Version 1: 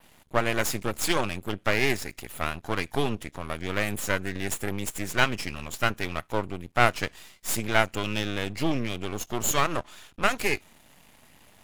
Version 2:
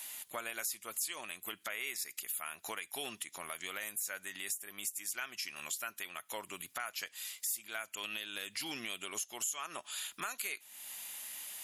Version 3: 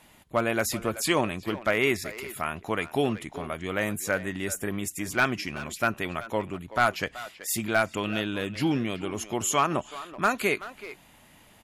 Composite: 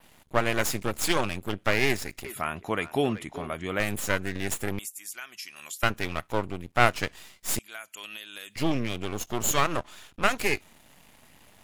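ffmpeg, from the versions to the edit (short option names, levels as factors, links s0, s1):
-filter_complex "[1:a]asplit=2[s0][s1];[0:a]asplit=4[s2][s3][s4][s5];[s2]atrim=end=2.252[s6];[2:a]atrim=start=2.248:end=3.802[s7];[s3]atrim=start=3.798:end=4.792[s8];[s0]atrim=start=4.788:end=5.832[s9];[s4]atrim=start=5.828:end=7.592[s10];[s1]atrim=start=7.588:end=8.562[s11];[s5]atrim=start=8.558[s12];[s6][s7]acrossfade=d=0.004:c1=hsin:c2=hsin[s13];[s13][s8]acrossfade=d=0.004:c1=hsin:c2=hsin[s14];[s14][s9]acrossfade=d=0.004:c1=hsin:c2=hsin[s15];[s15][s10]acrossfade=d=0.004:c1=hsin:c2=hsin[s16];[s16][s11]acrossfade=d=0.004:c1=hsin:c2=hsin[s17];[s17][s12]acrossfade=d=0.004:c1=hsin:c2=hsin"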